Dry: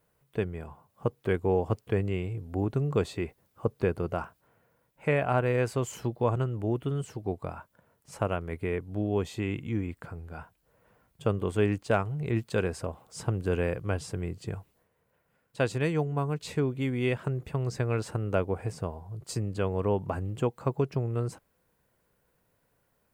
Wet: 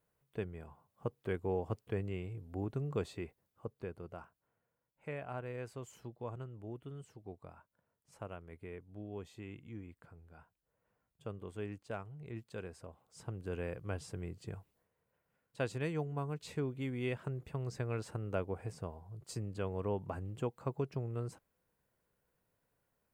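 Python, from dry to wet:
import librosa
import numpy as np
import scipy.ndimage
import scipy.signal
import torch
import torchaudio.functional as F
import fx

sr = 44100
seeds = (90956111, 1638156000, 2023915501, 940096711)

y = fx.gain(x, sr, db=fx.line((3.15, -9.5), (3.82, -16.5), (12.84, -16.5), (14.01, -9.0)))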